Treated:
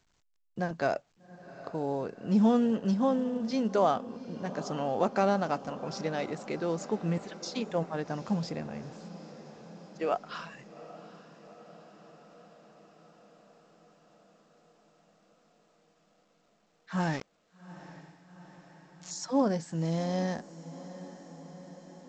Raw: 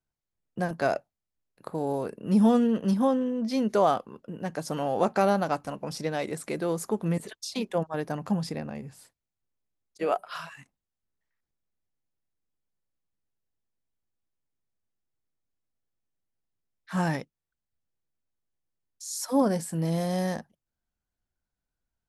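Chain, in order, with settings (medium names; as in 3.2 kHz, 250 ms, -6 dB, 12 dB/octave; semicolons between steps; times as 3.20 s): 17.00–19.11 s: small samples zeroed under -34 dBFS; echo that smears into a reverb 801 ms, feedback 68%, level -16 dB; trim -3 dB; A-law 128 kbps 16 kHz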